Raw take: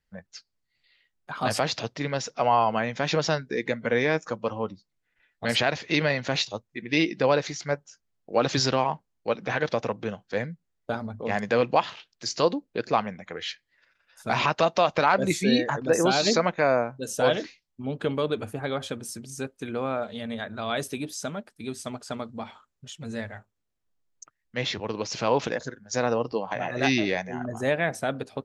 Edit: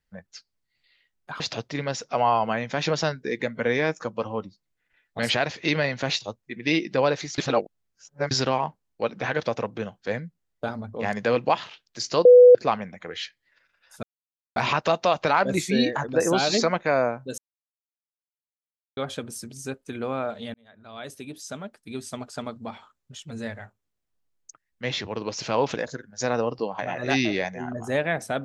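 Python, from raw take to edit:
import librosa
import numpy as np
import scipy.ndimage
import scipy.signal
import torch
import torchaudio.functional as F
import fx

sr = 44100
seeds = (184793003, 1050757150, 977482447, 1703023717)

y = fx.edit(x, sr, fx.cut(start_s=1.4, length_s=0.26),
    fx.reverse_span(start_s=7.64, length_s=0.93),
    fx.bleep(start_s=12.51, length_s=0.3, hz=494.0, db=-7.0),
    fx.insert_silence(at_s=14.29, length_s=0.53),
    fx.silence(start_s=17.11, length_s=1.59),
    fx.fade_in_span(start_s=20.27, length_s=1.46), tone=tone)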